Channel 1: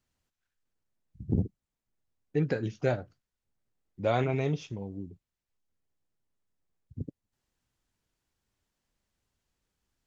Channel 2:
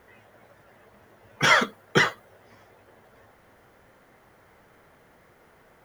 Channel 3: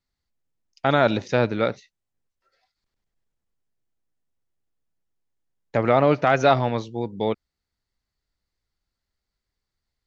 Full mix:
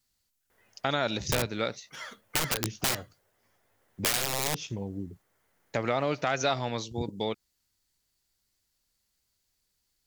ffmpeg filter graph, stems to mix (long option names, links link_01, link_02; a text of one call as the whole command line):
ffmpeg -i stem1.wav -i stem2.wav -i stem3.wav -filter_complex "[0:a]agate=range=-8dB:threshold=-56dB:ratio=16:detection=peak,aeval=exprs='(mod(15*val(0)+1,2)-1)/15':channel_layout=same,volume=3dB,asplit=2[link_01][link_02];[1:a]adelay=500,volume=-15dB,asplit=2[link_03][link_04];[link_04]volume=-5.5dB[link_05];[2:a]aemphasis=mode=production:type=cd,volume=-5dB[link_06];[link_02]apad=whole_len=279764[link_07];[link_03][link_07]sidechaincompress=threshold=-54dB:ratio=5:attack=16:release=611[link_08];[link_05]aecho=0:1:429:1[link_09];[link_01][link_08][link_06][link_09]amix=inputs=4:normalize=0,highshelf=frequency=3100:gain=11.5,acompressor=threshold=-28dB:ratio=2" out.wav